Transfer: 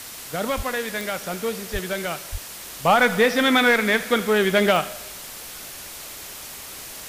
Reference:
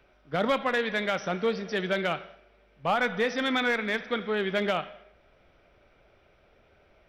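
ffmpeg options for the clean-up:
-filter_complex "[0:a]adeclick=t=4,asplit=3[s0][s1][s2];[s0]afade=t=out:st=0.56:d=0.02[s3];[s1]highpass=f=140:w=0.5412,highpass=f=140:w=1.3066,afade=t=in:st=0.56:d=0.02,afade=t=out:st=0.68:d=0.02[s4];[s2]afade=t=in:st=0.68:d=0.02[s5];[s3][s4][s5]amix=inputs=3:normalize=0,asplit=3[s6][s7][s8];[s6]afade=t=out:st=1.72:d=0.02[s9];[s7]highpass=f=140:w=0.5412,highpass=f=140:w=1.3066,afade=t=in:st=1.72:d=0.02,afade=t=out:st=1.84:d=0.02[s10];[s8]afade=t=in:st=1.84:d=0.02[s11];[s9][s10][s11]amix=inputs=3:normalize=0,asplit=3[s12][s13][s14];[s12]afade=t=out:st=2.31:d=0.02[s15];[s13]highpass=f=140:w=0.5412,highpass=f=140:w=1.3066,afade=t=in:st=2.31:d=0.02,afade=t=out:st=2.43:d=0.02[s16];[s14]afade=t=in:st=2.43:d=0.02[s17];[s15][s16][s17]amix=inputs=3:normalize=0,afwtdn=0.016,asetnsamples=n=441:p=0,asendcmd='2.67 volume volume -9dB',volume=1"

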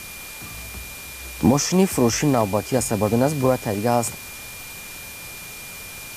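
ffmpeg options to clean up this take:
-af "bandreject=f=2400:w=30,afwtdn=0.014"

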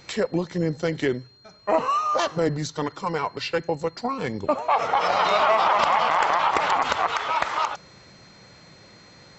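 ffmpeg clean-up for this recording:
-af "bandreject=f=4200:w=30"

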